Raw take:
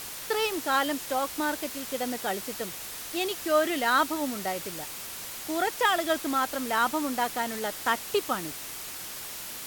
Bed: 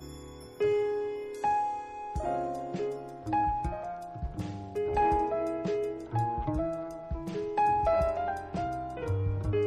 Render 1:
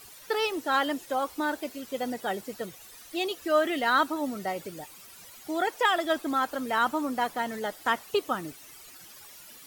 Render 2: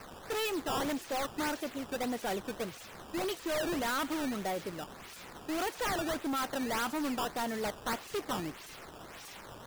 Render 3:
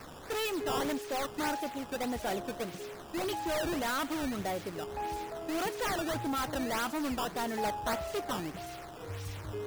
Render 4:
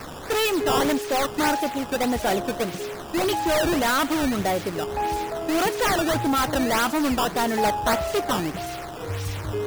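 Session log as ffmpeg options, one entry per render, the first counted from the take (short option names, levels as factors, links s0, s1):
-af "afftdn=nr=14:nf=-39"
-af "acrusher=samples=12:mix=1:aa=0.000001:lfo=1:lforange=19.2:lforate=1.7,volume=35.5,asoftclip=hard,volume=0.0282"
-filter_complex "[1:a]volume=0.282[s0];[0:a][s0]amix=inputs=2:normalize=0"
-af "volume=3.55"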